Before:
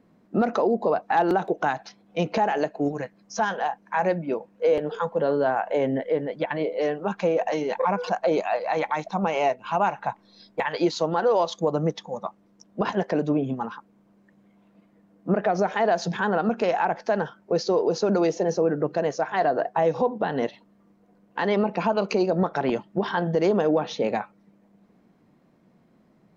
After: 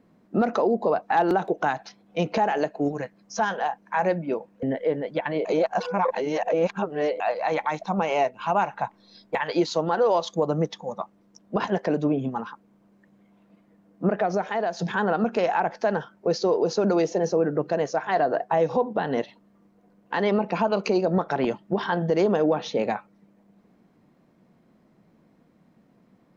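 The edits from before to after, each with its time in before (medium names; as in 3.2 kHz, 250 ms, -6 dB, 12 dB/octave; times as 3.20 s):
4.63–5.88 s: delete
6.70–8.45 s: reverse
15.30–16.04 s: fade out, to -6.5 dB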